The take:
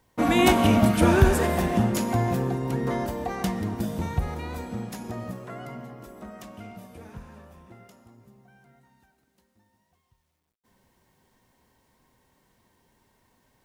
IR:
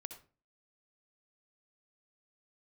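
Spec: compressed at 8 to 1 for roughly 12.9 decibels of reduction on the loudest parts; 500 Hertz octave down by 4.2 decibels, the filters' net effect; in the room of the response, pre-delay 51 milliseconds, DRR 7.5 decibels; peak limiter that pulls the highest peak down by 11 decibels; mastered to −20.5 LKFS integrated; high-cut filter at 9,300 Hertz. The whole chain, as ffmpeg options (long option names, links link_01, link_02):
-filter_complex "[0:a]lowpass=9300,equalizer=frequency=500:width_type=o:gain=-6.5,acompressor=threshold=-24dB:ratio=8,alimiter=level_in=1.5dB:limit=-24dB:level=0:latency=1,volume=-1.5dB,asplit=2[link_01][link_02];[1:a]atrim=start_sample=2205,adelay=51[link_03];[link_02][link_03]afir=irnorm=-1:irlink=0,volume=-3.5dB[link_04];[link_01][link_04]amix=inputs=2:normalize=0,volume=14.5dB"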